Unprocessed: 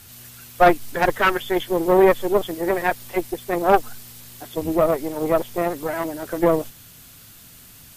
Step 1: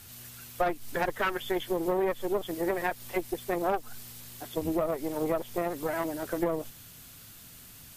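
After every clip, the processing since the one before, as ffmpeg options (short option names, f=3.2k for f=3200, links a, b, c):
-af "acompressor=threshold=-21dB:ratio=5,volume=-4dB"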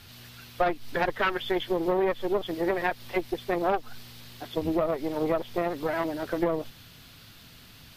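-af "highshelf=f=5.8k:t=q:w=1.5:g=-10,volume=2.5dB"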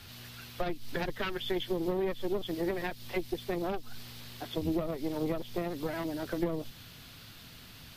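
-filter_complex "[0:a]acrossover=split=320|3000[a][b][c];[b]acompressor=threshold=-38dB:ratio=4[d];[a][d][c]amix=inputs=3:normalize=0"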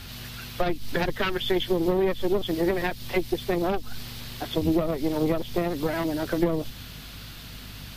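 -af "aeval=exprs='val(0)+0.00251*(sin(2*PI*50*n/s)+sin(2*PI*2*50*n/s)/2+sin(2*PI*3*50*n/s)/3+sin(2*PI*4*50*n/s)/4+sin(2*PI*5*50*n/s)/5)':c=same,volume=8dB"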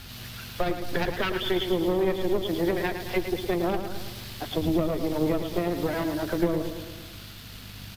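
-filter_complex "[0:a]asplit=2[a][b];[b]acrusher=bits=5:mix=0:aa=0.5,volume=-8.5dB[c];[a][c]amix=inputs=2:normalize=0,aecho=1:1:110|220|330|440|550|660|770:0.376|0.218|0.126|0.0733|0.0425|0.0247|0.0143,volume=-4.5dB"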